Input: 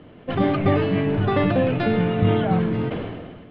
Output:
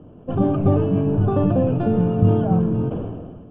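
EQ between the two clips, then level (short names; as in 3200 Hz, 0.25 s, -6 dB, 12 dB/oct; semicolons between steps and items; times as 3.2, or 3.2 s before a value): running mean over 22 samples; low shelf 190 Hz +5.5 dB; 0.0 dB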